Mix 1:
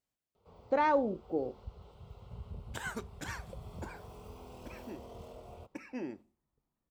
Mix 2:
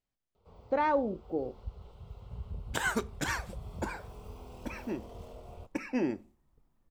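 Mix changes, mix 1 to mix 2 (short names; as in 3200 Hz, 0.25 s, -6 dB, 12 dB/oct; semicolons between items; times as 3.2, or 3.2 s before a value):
speech: add air absorption 66 m; second sound +9.0 dB; master: remove HPF 92 Hz 6 dB/oct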